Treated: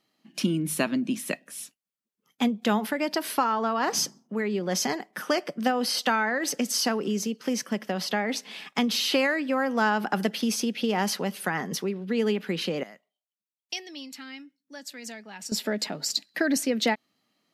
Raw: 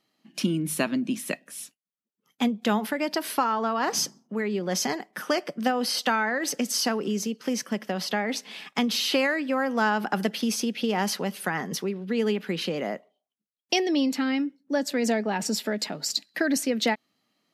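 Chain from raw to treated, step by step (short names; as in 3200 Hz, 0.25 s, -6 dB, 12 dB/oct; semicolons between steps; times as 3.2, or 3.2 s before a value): 12.83–15.52 passive tone stack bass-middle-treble 5-5-5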